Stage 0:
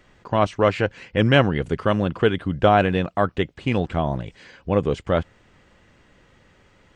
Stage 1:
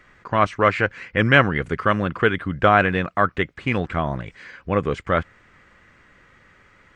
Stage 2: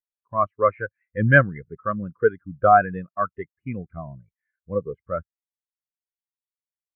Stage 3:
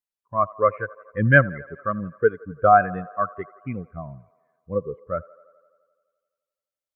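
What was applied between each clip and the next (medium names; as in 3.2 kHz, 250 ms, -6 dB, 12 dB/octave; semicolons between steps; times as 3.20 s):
high-order bell 1.6 kHz +8.5 dB 1.3 oct; trim -1.5 dB
spectral contrast expander 2.5:1
feedback echo behind a band-pass 85 ms, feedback 71%, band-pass 840 Hz, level -21 dB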